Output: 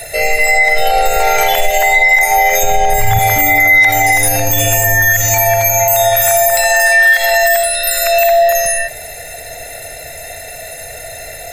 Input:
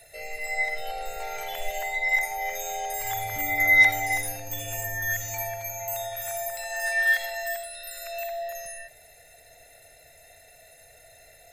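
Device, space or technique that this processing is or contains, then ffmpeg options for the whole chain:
mastering chain: -filter_complex "[0:a]asettb=1/sr,asplit=3[s0][s1][s2];[s0]atrim=end=2.634[s3];[s1]atrim=start=2.63:end=3.19,asetpts=PTS-STARTPTS,afade=t=in:d=0.004:c=qsin,afade=t=out:st=0.556:d=0.004:c=qsin,bass=f=250:g=15,treble=f=4000:g=-6[s4];[s2]atrim=start=3.186[s5];[s3][s4]acrossfade=d=0.004:c1=hsin:c2=qsin[s6];[s6][s5]acrossfade=d=0.004:c1=qsin:c2=hsin,equalizer=f=3500:t=o:w=0.77:g=-2,acompressor=threshold=0.0316:ratio=2.5,alimiter=level_in=18.8:limit=0.891:release=50:level=0:latency=1,volume=0.891"

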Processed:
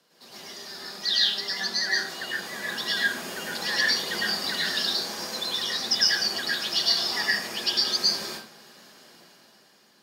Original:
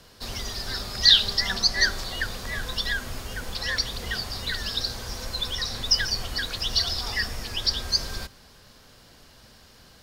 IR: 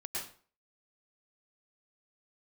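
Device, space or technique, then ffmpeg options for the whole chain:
far laptop microphone: -filter_complex "[1:a]atrim=start_sample=2205[s0];[0:a][s0]afir=irnorm=-1:irlink=0,highpass=f=180:w=0.5412,highpass=f=180:w=1.3066,dynaudnorm=f=180:g=11:m=3.76,volume=0.422"

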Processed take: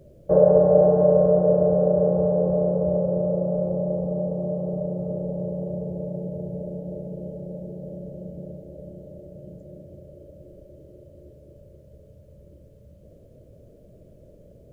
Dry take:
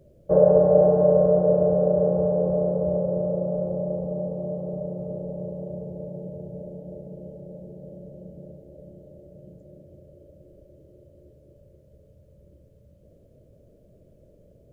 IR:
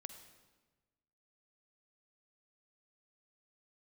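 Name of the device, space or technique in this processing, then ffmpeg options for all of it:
ducked reverb: -filter_complex "[0:a]asplit=3[s0][s1][s2];[1:a]atrim=start_sample=2205[s3];[s1][s3]afir=irnorm=-1:irlink=0[s4];[s2]apad=whole_len=649317[s5];[s4][s5]sidechaincompress=threshold=0.0251:ratio=8:attack=16:release=318,volume=1.33[s6];[s0][s6]amix=inputs=2:normalize=0"

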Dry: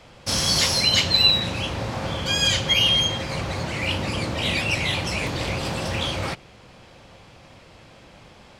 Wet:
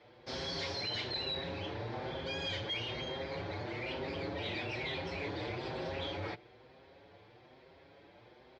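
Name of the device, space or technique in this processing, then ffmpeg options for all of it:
barber-pole flanger into a guitar amplifier: -filter_complex "[0:a]asplit=2[s0][s1];[s1]adelay=6.4,afreqshift=1.1[s2];[s0][s2]amix=inputs=2:normalize=1,asoftclip=type=tanh:threshold=0.075,highpass=100,equalizer=f=140:t=q:w=4:g=-7,equalizer=f=210:t=q:w=4:g=-9,equalizer=f=390:t=q:w=4:g=7,equalizer=f=1200:t=q:w=4:g=-7,equalizer=f=2800:t=q:w=4:g=-9,lowpass=f=4000:w=0.5412,lowpass=f=4000:w=1.3066,volume=0.501"

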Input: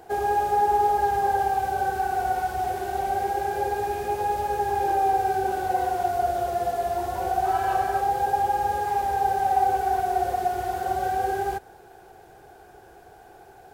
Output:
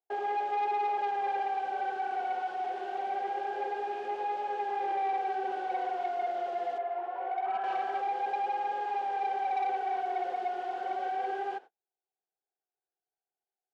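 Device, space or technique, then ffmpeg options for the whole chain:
intercom: -filter_complex "[0:a]lowpass=f=3900:p=1,agate=range=0.00631:threshold=0.0126:ratio=16:detection=peak,asettb=1/sr,asplit=3[s0][s1][s2];[s0]atrim=end=6.784[s3];[s1]atrim=start=6.78:end=7.64,asetpts=PTS-STARTPTS,afade=t=in:d=0.004:c=qsin,afade=t=out:st=0.856:d=0.004:c=qsin,acrossover=split=380 2500:gain=0.2 1 0.0708[s4][s5][s6];[s4][s5][s6]amix=inputs=3:normalize=0[s7];[s2]atrim=start=7.636[s8];[s3][s7]acrossfade=d=0.004:c1=hsin:c2=qsin[s9];[s9][s8]acrossfade=d=0.004:c1=qsin:c2=hsin,highpass=320,lowpass=4400,equalizer=f=3000:t=o:w=0.39:g=6,asoftclip=type=tanh:threshold=0.1,highpass=230,volume=0.531"

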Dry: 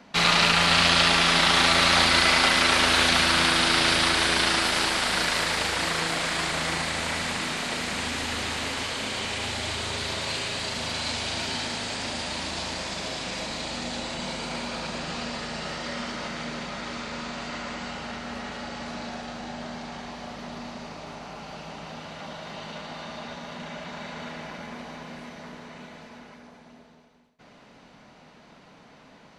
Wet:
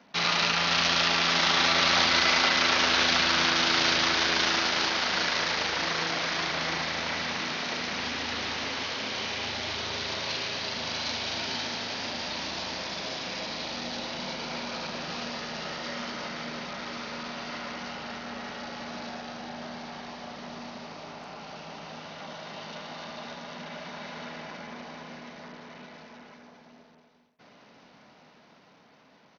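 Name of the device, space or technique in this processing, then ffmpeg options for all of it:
Bluetooth headset: -af "highpass=f=160:p=1,dynaudnorm=f=280:g=9:m=1.5,aresample=16000,aresample=44100,volume=0.531" -ar 48000 -c:a sbc -b:a 64k

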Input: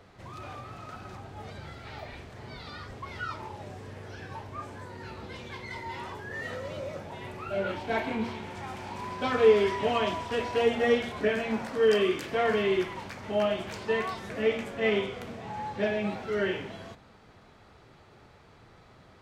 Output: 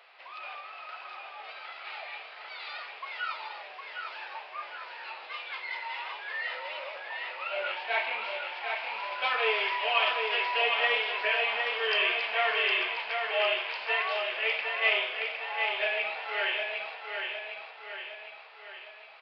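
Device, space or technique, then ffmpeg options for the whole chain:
musical greeting card: -af "aecho=1:1:759|1518|2277|3036|3795|4554|5313:0.562|0.292|0.152|0.0791|0.0411|0.0214|0.0111,aresample=11025,aresample=44100,highpass=f=640:w=0.5412,highpass=f=640:w=1.3066,equalizer=f=2600:t=o:w=0.6:g=11"

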